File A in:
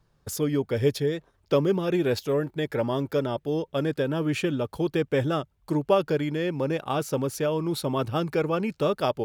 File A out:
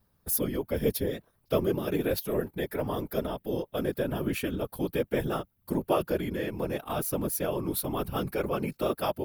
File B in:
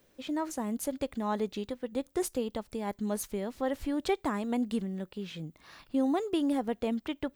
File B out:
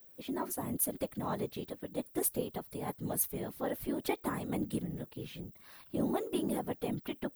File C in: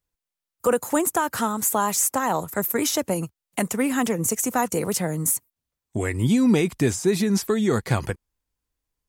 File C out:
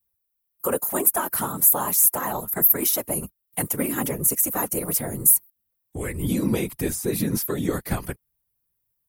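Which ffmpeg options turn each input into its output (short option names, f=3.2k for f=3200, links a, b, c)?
-af "aexciter=amount=5.4:drive=7.3:freq=9.8k,afftfilt=real='hypot(re,im)*cos(2*PI*random(0))':imag='hypot(re,im)*sin(2*PI*random(1))':win_size=512:overlap=0.75,volume=1.5dB"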